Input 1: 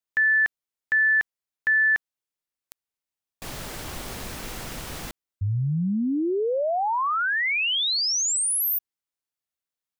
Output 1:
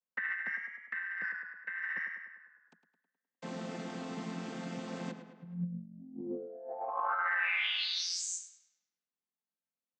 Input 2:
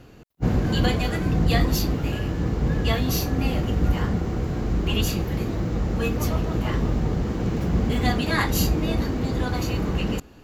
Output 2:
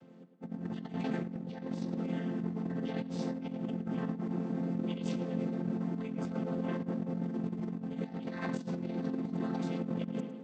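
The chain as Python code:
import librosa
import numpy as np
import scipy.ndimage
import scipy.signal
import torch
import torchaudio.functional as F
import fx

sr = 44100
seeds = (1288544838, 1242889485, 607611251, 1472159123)

p1 = fx.chord_vocoder(x, sr, chord='major triad', root=53)
p2 = p1 + fx.echo_tape(p1, sr, ms=103, feedback_pct=62, wet_db=-9.5, lp_hz=4000.0, drive_db=11.0, wow_cents=37, dry=0)
p3 = fx.over_compress(p2, sr, threshold_db=-28.0, ratio=-0.5)
y = F.gain(torch.from_numpy(p3), -7.0).numpy()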